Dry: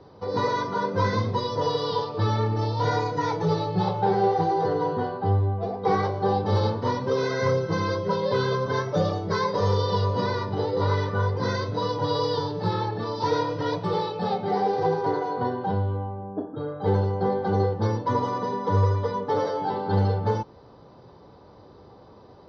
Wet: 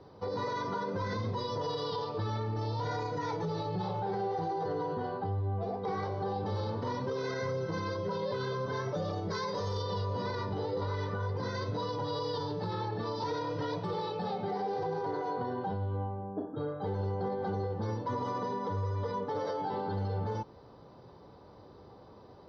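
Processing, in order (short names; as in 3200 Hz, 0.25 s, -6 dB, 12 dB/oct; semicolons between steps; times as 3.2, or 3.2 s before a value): 9.3–9.83 high shelf 4500 Hz +9.5 dB; limiter -22.5 dBFS, peak gain reduction 10 dB; gain -4 dB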